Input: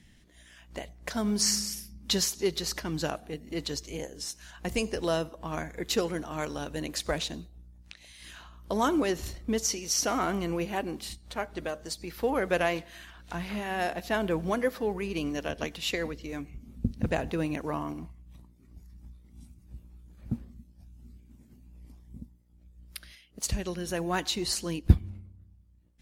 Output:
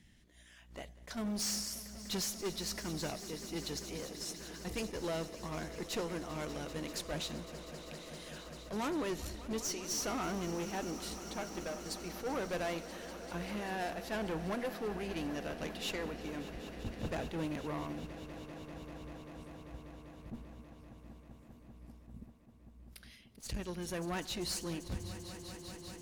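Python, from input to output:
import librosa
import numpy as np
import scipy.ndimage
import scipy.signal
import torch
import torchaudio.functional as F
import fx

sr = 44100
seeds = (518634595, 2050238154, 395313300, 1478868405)

y = fx.tube_stage(x, sr, drive_db=29.0, bias=0.45)
y = fx.echo_swell(y, sr, ms=196, loudest=5, wet_db=-16.5)
y = fx.attack_slew(y, sr, db_per_s=230.0)
y = F.gain(torch.from_numpy(y), -3.5).numpy()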